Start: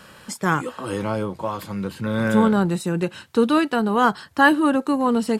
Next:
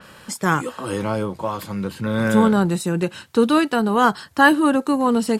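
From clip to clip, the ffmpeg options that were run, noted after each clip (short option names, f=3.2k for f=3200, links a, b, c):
-af "adynamicequalizer=threshold=0.0158:dfrequency=4500:dqfactor=0.7:tfrequency=4500:tqfactor=0.7:attack=5:release=100:ratio=0.375:range=2:mode=boostabove:tftype=highshelf,volume=1.5dB"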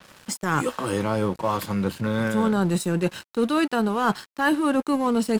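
-af "areverse,acompressor=threshold=-23dB:ratio=6,areverse,aeval=exprs='sgn(val(0))*max(abs(val(0))-0.00668,0)':c=same,volume=4.5dB"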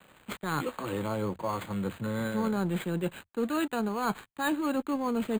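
-filter_complex "[0:a]acrossover=split=110|1300[a][b][c];[a]asplit=2[d][e];[e]adelay=48,volume=-10dB[f];[d][f]amix=inputs=2:normalize=0[g];[c]acrusher=samples=8:mix=1:aa=0.000001[h];[g][b][h]amix=inputs=3:normalize=0,volume=-7.5dB"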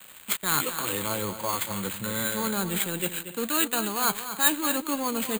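-filter_complex "[0:a]crystalizer=i=10:c=0,asplit=2[a][b];[b]aecho=0:1:233|284:0.282|0.106[c];[a][c]amix=inputs=2:normalize=0,volume=-2.5dB"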